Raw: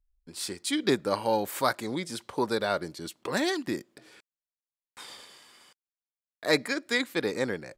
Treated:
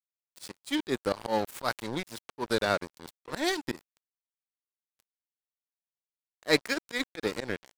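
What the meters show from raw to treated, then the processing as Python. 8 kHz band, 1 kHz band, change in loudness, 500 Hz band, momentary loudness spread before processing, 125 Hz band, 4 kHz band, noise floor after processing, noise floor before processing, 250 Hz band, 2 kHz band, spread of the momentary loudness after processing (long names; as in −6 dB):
−4.0 dB, −3.0 dB, −1.5 dB, −2.5 dB, 15 LU, −2.0 dB, −1.5 dB, below −85 dBFS, below −85 dBFS, −3.0 dB, −1.5 dB, 16 LU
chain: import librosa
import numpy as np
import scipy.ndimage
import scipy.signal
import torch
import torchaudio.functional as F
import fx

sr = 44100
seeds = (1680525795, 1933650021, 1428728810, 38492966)

y = np.sign(x) * np.maximum(np.abs(x) - 10.0 ** (-34.5 / 20.0), 0.0)
y = fx.auto_swell(y, sr, attack_ms=112.0)
y = y * 10.0 ** (3.5 / 20.0)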